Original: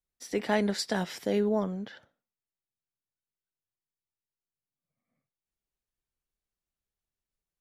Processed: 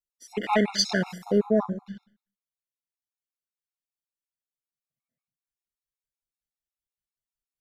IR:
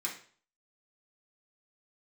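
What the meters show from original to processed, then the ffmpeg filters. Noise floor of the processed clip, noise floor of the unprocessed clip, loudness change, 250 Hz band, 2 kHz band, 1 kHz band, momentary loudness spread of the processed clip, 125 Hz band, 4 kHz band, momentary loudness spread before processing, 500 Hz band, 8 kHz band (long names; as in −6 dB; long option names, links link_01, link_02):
below −85 dBFS, below −85 dBFS, +4.5 dB, +3.5 dB, +4.5 dB, +5.5 dB, 15 LU, +3.5 dB, +8.5 dB, 9 LU, +3.5 dB, +6.5 dB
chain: -filter_complex "[0:a]afwtdn=0.01,highshelf=frequency=2300:gain=9,aeval=exprs='0.266*(cos(1*acos(clip(val(0)/0.266,-1,1)))-cos(1*PI/2))+0.0188*(cos(2*acos(clip(val(0)/0.266,-1,1)))-cos(2*PI/2))':channel_layout=same,asplit=2[link_01][link_02];[link_02]asubboost=boost=11:cutoff=160[link_03];[1:a]atrim=start_sample=2205,adelay=58[link_04];[link_03][link_04]afir=irnorm=-1:irlink=0,volume=-14dB[link_05];[link_01][link_05]amix=inputs=2:normalize=0,afftfilt=real='re*gt(sin(2*PI*5.3*pts/sr)*(1-2*mod(floor(b*sr/1024/710),2)),0)':imag='im*gt(sin(2*PI*5.3*pts/sr)*(1-2*mod(floor(b*sr/1024/710),2)),0)':win_size=1024:overlap=0.75,volume=6dB"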